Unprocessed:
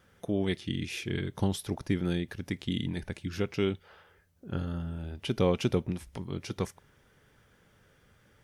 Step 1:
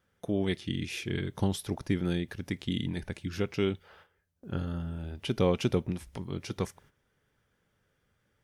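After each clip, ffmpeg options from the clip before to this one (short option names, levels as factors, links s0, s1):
-af "agate=range=0.282:threshold=0.00141:ratio=16:detection=peak"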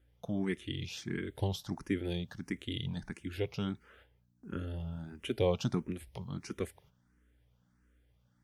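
-filter_complex "[0:a]aeval=exprs='val(0)+0.000631*(sin(2*PI*60*n/s)+sin(2*PI*2*60*n/s)/2+sin(2*PI*3*60*n/s)/3+sin(2*PI*4*60*n/s)/4+sin(2*PI*5*60*n/s)/5)':c=same,asplit=2[s0][s1];[s1]afreqshift=1.5[s2];[s0][s2]amix=inputs=2:normalize=1,volume=0.841"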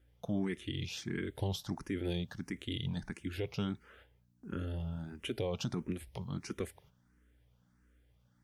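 -af "alimiter=level_in=1.41:limit=0.0631:level=0:latency=1:release=53,volume=0.708,volume=1.12"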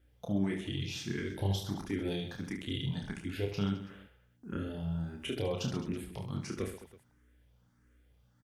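-af "aecho=1:1:30|72|130.8|213.1|328.4:0.631|0.398|0.251|0.158|0.1"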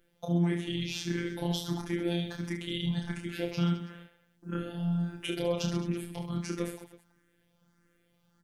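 -af "bandreject=f=60:t=h:w=6,bandreject=f=120:t=h:w=6,afftfilt=real='hypot(re,im)*cos(PI*b)':imag='0':win_size=1024:overlap=0.75,volume=2.24"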